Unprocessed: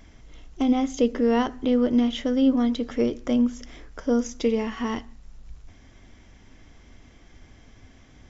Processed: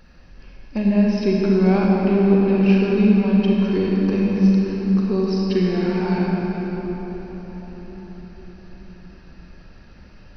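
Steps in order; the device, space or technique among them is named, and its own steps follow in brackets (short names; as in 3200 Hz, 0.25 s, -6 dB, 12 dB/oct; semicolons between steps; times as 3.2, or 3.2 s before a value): slowed and reverbed (varispeed -20%; reverb RT60 5.2 s, pre-delay 33 ms, DRR -3.5 dB)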